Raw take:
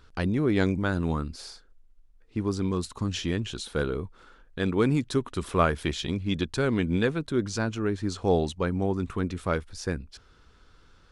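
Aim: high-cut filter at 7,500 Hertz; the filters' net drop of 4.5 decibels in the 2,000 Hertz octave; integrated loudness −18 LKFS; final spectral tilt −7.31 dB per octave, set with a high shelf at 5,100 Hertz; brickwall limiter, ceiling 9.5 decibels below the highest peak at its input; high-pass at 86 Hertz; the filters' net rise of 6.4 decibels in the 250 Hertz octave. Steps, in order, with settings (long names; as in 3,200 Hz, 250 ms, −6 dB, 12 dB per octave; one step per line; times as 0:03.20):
high-pass filter 86 Hz
low-pass filter 7,500 Hz
parametric band 250 Hz +8.5 dB
parametric band 2,000 Hz −6 dB
high-shelf EQ 5,100 Hz −5 dB
level +9 dB
brickwall limiter −6.5 dBFS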